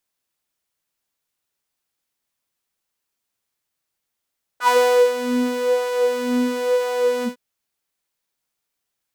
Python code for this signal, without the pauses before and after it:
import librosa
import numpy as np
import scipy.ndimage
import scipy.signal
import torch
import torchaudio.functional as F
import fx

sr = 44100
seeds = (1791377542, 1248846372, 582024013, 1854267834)

y = fx.sub_patch_wobble(sr, seeds[0], note=71, wave='saw', wave2='square', interval_st=-12, level2_db=-12, sub_db=-15.0, noise_db=-30.0, kind='highpass', cutoff_hz=170.0, q=6.0, env_oct=3.0, env_decay_s=0.16, env_sustain_pct=40, attack_ms=83.0, decay_s=0.45, sustain_db=-10.0, release_s=0.12, note_s=2.64, lfo_hz=0.98, wobble_oct=0.6)